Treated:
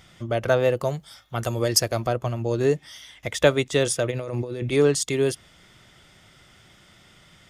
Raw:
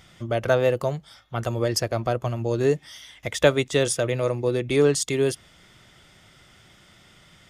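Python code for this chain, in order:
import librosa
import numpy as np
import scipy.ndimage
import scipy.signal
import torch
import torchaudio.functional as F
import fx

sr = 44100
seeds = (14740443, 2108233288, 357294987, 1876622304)

y = fx.high_shelf(x, sr, hz=fx.line((0.84, 7500.0), (2.06, 4000.0)), db=10.5, at=(0.84, 2.06), fade=0.02)
y = fx.over_compress(y, sr, threshold_db=-31.0, ratio=-1.0, at=(4.1, 4.71), fade=0.02)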